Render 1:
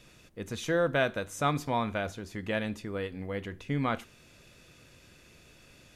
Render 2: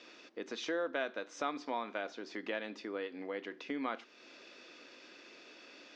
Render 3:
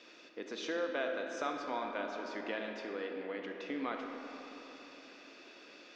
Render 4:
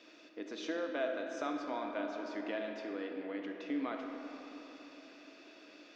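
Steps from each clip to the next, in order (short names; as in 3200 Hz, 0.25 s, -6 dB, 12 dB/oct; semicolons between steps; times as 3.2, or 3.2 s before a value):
elliptic band-pass 280–5300 Hz, stop band 40 dB; compressor 2:1, threshold -46 dBFS, peak gain reduction 13 dB; gain +4 dB
reverb RT60 4.1 s, pre-delay 5 ms, DRR 2.5 dB; gain -1.5 dB
small resonant body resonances 300/640 Hz, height 10 dB, ringing for 85 ms; gain -3 dB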